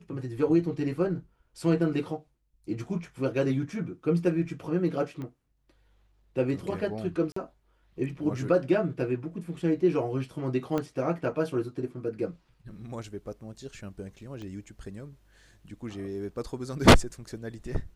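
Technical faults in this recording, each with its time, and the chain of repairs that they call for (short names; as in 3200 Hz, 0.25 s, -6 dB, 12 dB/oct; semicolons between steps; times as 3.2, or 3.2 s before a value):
5.22 pop -27 dBFS
7.32–7.36 gap 44 ms
10.78 pop -17 dBFS
14.42 pop -30 dBFS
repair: de-click; interpolate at 7.32, 44 ms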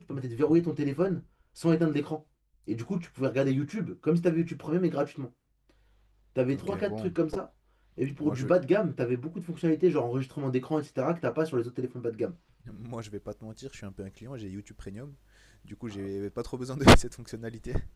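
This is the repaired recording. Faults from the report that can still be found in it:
5.22 pop
10.78 pop
14.42 pop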